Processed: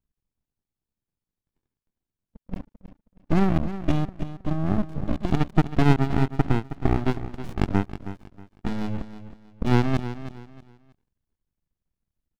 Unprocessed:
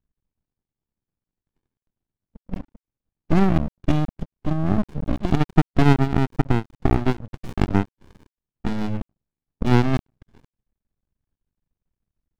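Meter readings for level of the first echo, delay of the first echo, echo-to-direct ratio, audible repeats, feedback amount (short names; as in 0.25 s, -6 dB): -12.5 dB, 0.318 s, -12.0 dB, 3, 28%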